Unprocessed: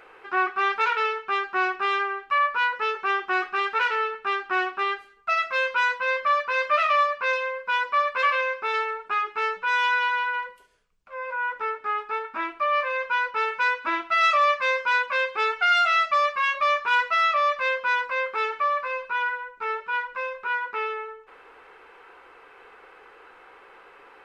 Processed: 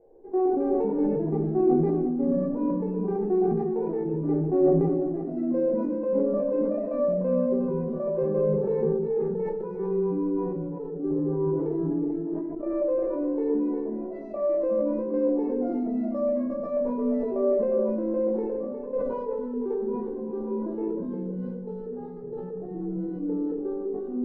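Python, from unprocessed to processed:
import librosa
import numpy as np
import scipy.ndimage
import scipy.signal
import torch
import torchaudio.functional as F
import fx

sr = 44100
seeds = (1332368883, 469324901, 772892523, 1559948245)

y = scipy.signal.sosfilt(scipy.signal.cheby2(4, 40, 1200.0, 'lowpass', fs=sr, output='sos'), x)
y = fx.level_steps(y, sr, step_db=17)
y = fx.echo_pitch(y, sr, ms=122, semitones=-5, count=3, db_per_echo=-3.0)
y = y + 10.0 ** (-8.5 / 20.0) * np.pad(y, (int(356 * sr / 1000.0), 0))[:len(y)]
y = fx.room_shoebox(y, sr, seeds[0], volume_m3=63.0, walls='mixed', distance_m=0.77)
y = fx.sustainer(y, sr, db_per_s=26.0)
y = F.gain(torch.from_numpy(y), 6.5).numpy()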